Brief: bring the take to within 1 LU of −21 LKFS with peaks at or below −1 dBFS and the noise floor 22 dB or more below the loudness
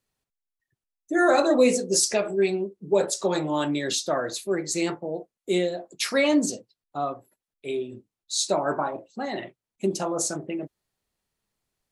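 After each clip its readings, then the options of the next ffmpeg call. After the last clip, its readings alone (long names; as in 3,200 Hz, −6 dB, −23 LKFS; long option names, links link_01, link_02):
integrated loudness −25.5 LKFS; sample peak −7.0 dBFS; target loudness −21.0 LKFS
→ -af "volume=4.5dB"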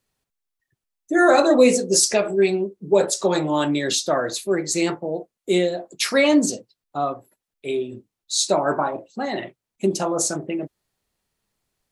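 integrated loudness −21.0 LKFS; sample peak −2.5 dBFS; background noise floor −85 dBFS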